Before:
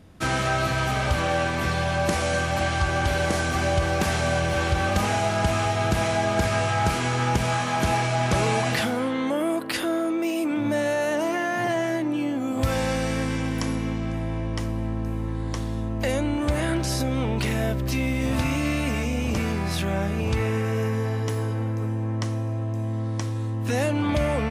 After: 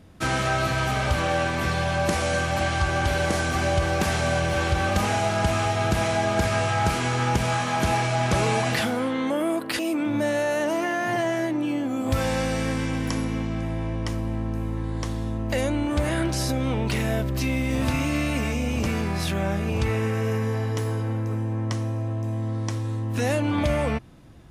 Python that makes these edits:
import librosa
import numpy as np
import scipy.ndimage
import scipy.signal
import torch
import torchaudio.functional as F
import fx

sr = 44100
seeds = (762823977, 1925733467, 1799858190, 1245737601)

y = fx.edit(x, sr, fx.cut(start_s=9.79, length_s=0.51), tone=tone)